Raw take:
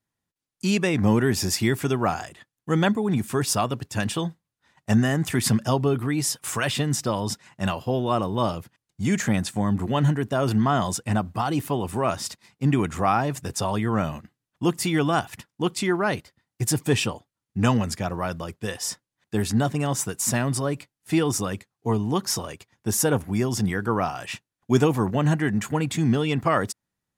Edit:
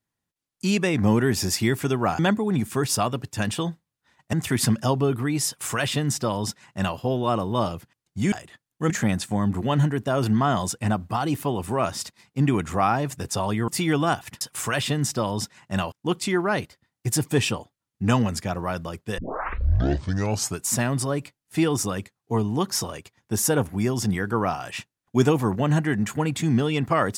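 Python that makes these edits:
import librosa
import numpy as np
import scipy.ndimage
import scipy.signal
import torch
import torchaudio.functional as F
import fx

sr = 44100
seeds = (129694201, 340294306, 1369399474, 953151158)

y = fx.edit(x, sr, fx.move(start_s=2.19, length_s=0.58, to_s=9.15),
    fx.cut(start_s=4.91, length_s=0.25),
    fx.duplicate(start_s=6.3, length_s=1.51, to_s=15.47),
    fx.cut(start_s=13.93, length_s=0.81),
    fx.tape_start(start_s=18.73, length_s=1.48), tone=tone)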